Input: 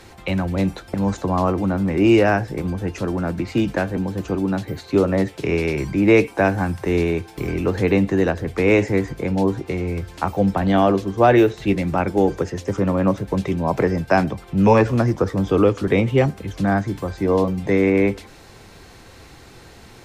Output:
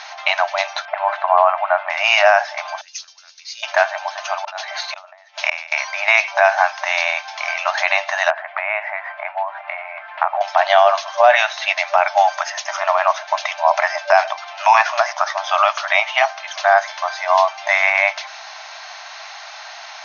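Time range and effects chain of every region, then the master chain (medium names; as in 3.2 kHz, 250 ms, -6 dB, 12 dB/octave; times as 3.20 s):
0.85–1.90 s: low-pass 2.7 kHz 24 dB/octave + hum notches 60/120/180/240/300/360/420/480/540/600 Hz
2.81–3.63 s: compression 1.5:1, threshold -26 dBFS + Butterworth band-pass 5.9 kHz, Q 1.4
4.37–5.72 s: inverted gate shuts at -12 dBFS, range -32 dB + brick-wall FIR high-pass 410 Hz + decay stretcher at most 110 dB/s
8.30–10.41 s: low-pass 2.3 kHz 24 dB/octave + compression 2.5:1, threshold -25 dBFS
whole clip: FFT band-pass 590–6700 Hz; loudness maximiser +14.5 dB; trim -1 dB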